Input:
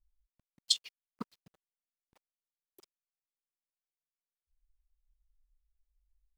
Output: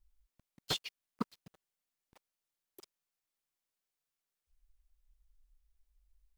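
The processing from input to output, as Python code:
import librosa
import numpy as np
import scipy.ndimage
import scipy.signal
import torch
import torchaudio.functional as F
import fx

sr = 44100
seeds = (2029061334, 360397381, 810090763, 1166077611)

y = fx.slew_limit(x, sr, full_power_hz=60.0)
y = F.gain(torch.from_numpy(y), 5.0).numpy()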